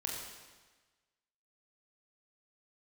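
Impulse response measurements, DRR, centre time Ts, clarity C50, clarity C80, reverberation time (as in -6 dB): -2.0 dB, 68 ms, 2.0 dB, 3.5 dB, 1.3 s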